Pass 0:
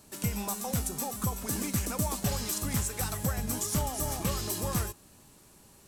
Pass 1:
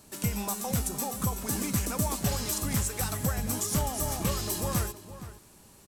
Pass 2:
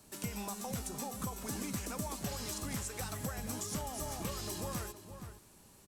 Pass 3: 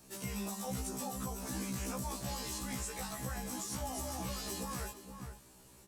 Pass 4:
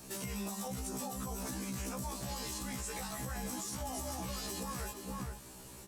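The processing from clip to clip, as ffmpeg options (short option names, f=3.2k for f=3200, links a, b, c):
-filter_complex "[0:a]asplit=2[a][b];[b]adelay=466.5,volume=-13dB,highshelf=f=4k:g=-10.5[c];[a][c]amix=inputs=2:normalize=0,volume=1.5dB"
-filter_complex "[0:a]acrossover=split=230|7700[a][b][c];[a]acompressor=threshold=-37dB:ratio=4[d];[b]acompressor=threshold=-34dB:ratio=4[e];[c]acompressor=threshold=-43dB:ratio=4[f];[d][e][f]amix=inputs=3:normalize=0,volume=-5dB"
-af "alimiter=level_in=7.5dB:limit=-24dB:level=0:latency=1:release=11,volume=-7.5dB,afftfilt=real='re*1.73*eq(mod(b,3),0)':imag='im*1.73*eq(mod(b,3),0)':win_size=2048:overlap=0.75,volume=3.5dB"
-af "alimiter=level_in=14.5dB:limit=-24dB:level=0:latency=1:release=239,volume=-14.5dB,volume=8dB"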